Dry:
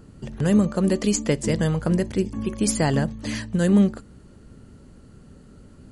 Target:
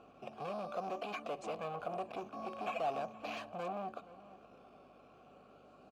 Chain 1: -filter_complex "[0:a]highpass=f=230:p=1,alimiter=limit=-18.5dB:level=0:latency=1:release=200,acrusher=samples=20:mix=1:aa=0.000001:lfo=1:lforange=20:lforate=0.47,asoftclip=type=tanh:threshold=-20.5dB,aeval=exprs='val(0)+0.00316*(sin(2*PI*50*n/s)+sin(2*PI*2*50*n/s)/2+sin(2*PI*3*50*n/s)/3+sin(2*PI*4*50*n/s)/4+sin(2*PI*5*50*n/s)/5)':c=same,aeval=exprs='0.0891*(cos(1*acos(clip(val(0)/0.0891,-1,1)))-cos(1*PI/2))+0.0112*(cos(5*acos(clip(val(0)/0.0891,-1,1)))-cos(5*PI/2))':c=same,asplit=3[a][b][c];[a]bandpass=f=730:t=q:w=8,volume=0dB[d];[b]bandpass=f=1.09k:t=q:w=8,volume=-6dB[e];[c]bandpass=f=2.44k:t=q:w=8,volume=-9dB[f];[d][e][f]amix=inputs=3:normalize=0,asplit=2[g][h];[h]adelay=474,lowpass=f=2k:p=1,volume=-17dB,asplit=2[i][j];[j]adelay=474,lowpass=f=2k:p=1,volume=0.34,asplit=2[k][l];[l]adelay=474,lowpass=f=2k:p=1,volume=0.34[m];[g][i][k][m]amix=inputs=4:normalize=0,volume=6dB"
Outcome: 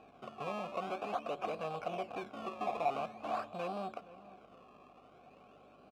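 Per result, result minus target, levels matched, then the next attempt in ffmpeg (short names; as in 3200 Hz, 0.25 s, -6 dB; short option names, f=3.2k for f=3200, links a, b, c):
soft clip: distortion -11 dB; decimation with a swept rate: distortion +6 dB
-filter_complex "[0:a]highpass=f=230:p=1,alimiter=limit=-18.5dB:level=0:latency=1:release=200,acrusher=samples=20:mix=1:aa=0.000001:lfo=1:lforange=20:lforate=0.47,asoftclip=type=tanh:threshold=-30dB,aeval=exprs='val(0)+0.00316*(sin(2*PI*50*n/s)+sin(2*PI*2*50*n/s)/2+sin(2*PI*3*50*n/s)/3+sin(2*PI*4*50*n/s)/4+sin(2*PI*5*50*n/s)/5)':c=same,aeval=exprs='0.0891*(cos(1*acos(clip(val(0)/0.0891,-1,1)))-cos(1*PI/2))+0.0112*(cos(5*acos(clip(val(0)/0.0891,-1,1)))-cos(5*PI/2))':c=same,asplit=3[a][b][c];[a]bandpass=f=730:t=q:w=8,volume=0dB[d];[b]bandpass=f=1.09k:t=q:w=8,volume=-6dB[e];[c]bandpass=f=2.44k:t=q:w=8,volume=-9dB[f];[d][e][f]amix=inputs=3:normalize=0,asplit=2[g][h];[h]adelay=474,lowpass=f=2k:p=1,volume=-17dB,asplit=2[i][j];[j]adelay=474,lowpass=f=2k:p=1,volume=0.34,asplit=2[k][l];[l]adelay=474,lowpass=f=2k:p=1,volume=0.34[m];[g][i][k][m]amix=inputs=4:normalize=0,volume=6dB"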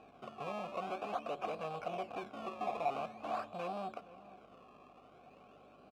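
decimation with a swept rate: distortion +6 dB
-filter_complex "[0:a]highpass=f=230:p=1,alimiter=limit=-18.5dB:level=0:latency=1:release=200,acrusher=samples=6:mix=1:aa=0.000001:lfo=1:lforange=6:lforate=0.47,asoftclip=type=tanh:threshold=-30dB,aeval=exprs='val(0)+0.00316*(sin(2*PI*50*n/s)+sin(2*PI*2*50*n/s)/2+sin(2*PI*3*50*n/s)/3+sin(2*PI*4*50*n/s)/4+sin(2*PI*5*50*n/s)/5)':c=same,aeval=exprs='0.0891*(cos(1*acos(clip(val(0)/0.0891,-1,1)))-cos(1*PI/2))+0.0112*(cos(5*acos(clip(val(0)/0.0891,-1,1)))-cos(5*PI/2))':c=same,asplit=3[a][b][c];[a]bandpass=f=730:t=q:w=8,volume=0dB[d];[b]bandpass=f=1.09k:t=q:w=8,volume=-6dB[e];[c]bandpass=f=2.44k:t=q:w=8,volume=-9dB[f];[d][e][f]amix=inputs=3:normalize=0,asplit=2[g][h];[h]adelay=474,lowpass=f=2k:p=1,volume=-17dB,asplit=2[i][j];[j]adelay=474,lowpass=f=2k:p=1,volume=0.34,asplit=2[k][l];[l]adelay=474,lowpass=f=2k:p=1,volume=0.34[m];[g][i][k][m]amix=inputs=4:normalize=0,volume=6dB"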